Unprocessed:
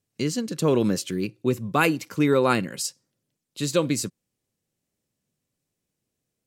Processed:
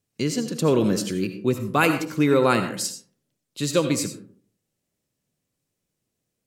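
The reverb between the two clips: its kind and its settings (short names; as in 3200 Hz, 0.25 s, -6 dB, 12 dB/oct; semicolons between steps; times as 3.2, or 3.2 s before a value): digital reverb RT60 0.51 s, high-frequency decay 0.45×, pre-delay 40 ms, DRR 7.5 dB; gain +1 dB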